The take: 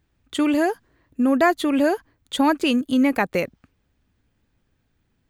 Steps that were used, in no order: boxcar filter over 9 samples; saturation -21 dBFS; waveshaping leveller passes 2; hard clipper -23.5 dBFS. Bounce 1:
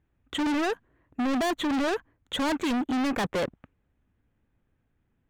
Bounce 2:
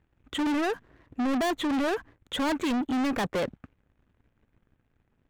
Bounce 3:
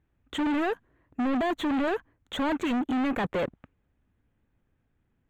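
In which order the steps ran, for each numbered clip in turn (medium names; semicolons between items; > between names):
waveshaping leveller > boxcar filter > hard clipper > saturation; boxcar filter > hard clipper > saturation > waveshaping leveller; waveshaping leveller > hard clipper > boxcar filter > saturation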